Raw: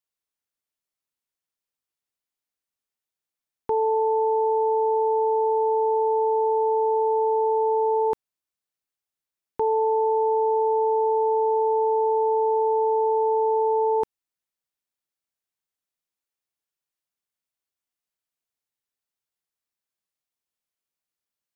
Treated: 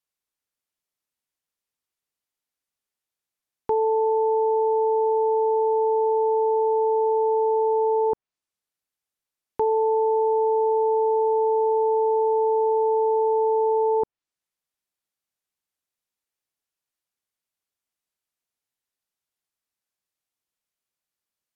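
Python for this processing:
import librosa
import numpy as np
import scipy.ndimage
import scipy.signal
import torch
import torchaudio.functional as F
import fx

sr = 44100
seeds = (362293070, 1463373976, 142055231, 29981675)

y = fx.env_lowpass_down(x, sr, base_hz=920.0, full_db=-19.5)
y = F.gain(torch.from_numpy(y), 1.5).numpy()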